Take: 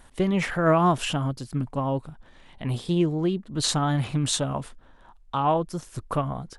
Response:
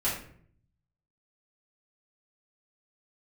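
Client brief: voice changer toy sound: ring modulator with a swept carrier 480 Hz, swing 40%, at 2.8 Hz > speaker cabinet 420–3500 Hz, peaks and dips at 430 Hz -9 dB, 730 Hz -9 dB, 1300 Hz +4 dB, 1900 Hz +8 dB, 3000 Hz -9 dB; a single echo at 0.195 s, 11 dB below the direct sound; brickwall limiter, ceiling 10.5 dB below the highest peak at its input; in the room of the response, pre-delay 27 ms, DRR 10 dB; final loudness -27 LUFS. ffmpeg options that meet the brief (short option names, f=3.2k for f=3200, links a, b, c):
-filter_complex "[0:a]alimiter=limit=-18dB:level=0:latency=1,aecho=1:1:195:0.282,asplit=2[a][b];[1:a]atrim=start_sample=2205,adelay=27[c];[b][c]afir=irnorm=-1:irlink=0,volume=-18.5dB[d];[a][d]amix=inputs=2:normalize=0,aeval=exprs='val(0)*sin(2*PI*480*n/s+480*0.4/2.8*sin(2*PI*2.8*n/s))':c=same,highpass=420,equalizer=f=430:t=q:w=4:g=-9,equalizer=f=730:t=q:w=4:g=-9,equalizer=f=1.3k:t=q:w=4:g=4,equalizer=f=1.9k:t=q:w=4:g=8,equalizer=f=3k:t=q:w=4:g=-9,lowpass=f=3.5k:w=0.5412,lowpass=f=3.5k:w=1.3066,volume=6dB"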